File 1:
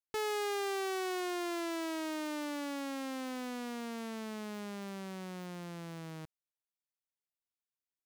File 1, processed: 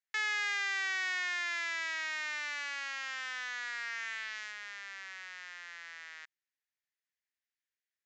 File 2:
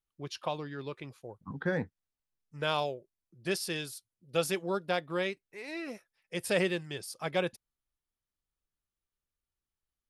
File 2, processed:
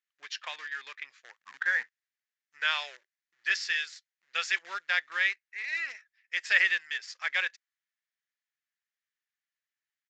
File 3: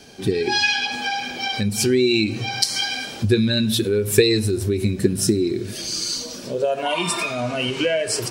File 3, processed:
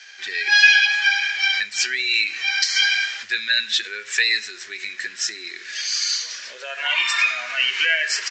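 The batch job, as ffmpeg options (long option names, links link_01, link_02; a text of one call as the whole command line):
ffmpeg -i in.wav -filter_complex "[0:a]apsyclip=13.5dB,asplit=2[link_01][link_02];[link_02]acrusher=bits=5:dc=4:mix=0:aa=0.000001,volume=-6dB[link_03];[link_01][link_03]amix=inputs=2:normalize=0,aresample=16000,aresample=44100,highpass=frequency=1800:width_type=q:width=4.3,volume=-15dB" out.wav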